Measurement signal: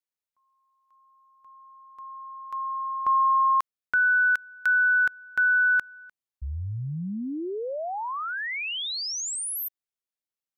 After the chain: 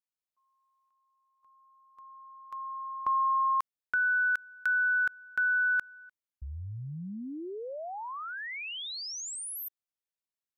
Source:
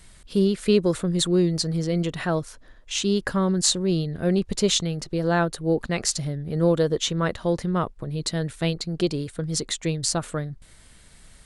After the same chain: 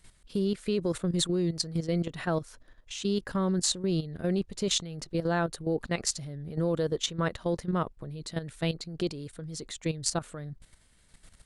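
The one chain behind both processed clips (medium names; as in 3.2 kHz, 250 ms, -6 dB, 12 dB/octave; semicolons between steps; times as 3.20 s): level held to a coarse grid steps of 12 dB; trim -2.5 dB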